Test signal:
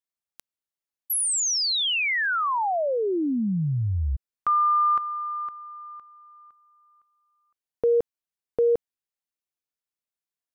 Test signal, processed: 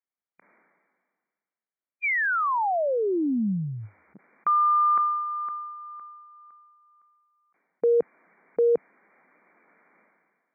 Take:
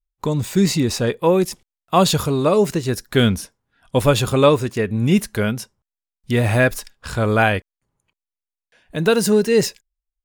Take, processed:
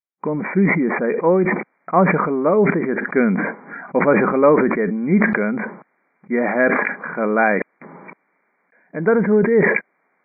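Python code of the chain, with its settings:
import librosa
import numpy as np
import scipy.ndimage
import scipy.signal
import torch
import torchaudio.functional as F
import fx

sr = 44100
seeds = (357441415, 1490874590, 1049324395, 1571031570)

y = fx.brickwall_bandpass(x, sr, low_hz=160.0, high_hz=2400.0)
y = fx.sustainer(y, sr, db_per_s=34.0)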